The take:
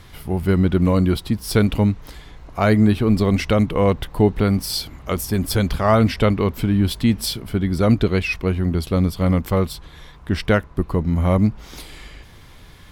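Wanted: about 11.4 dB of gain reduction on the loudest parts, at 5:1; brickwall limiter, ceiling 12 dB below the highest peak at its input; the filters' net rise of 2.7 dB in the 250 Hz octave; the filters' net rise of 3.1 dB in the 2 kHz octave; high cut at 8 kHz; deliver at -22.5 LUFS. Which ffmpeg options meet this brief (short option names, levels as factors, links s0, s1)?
-af "lowpass=8000,equalizer=f=250:t=o:g=3.5,equalizer=f=2000:t=o:g=4,acompressor=threshold=0.0794:ratio=5,volume=3.16,alimiter=limit=0.237:level=0:latency=1"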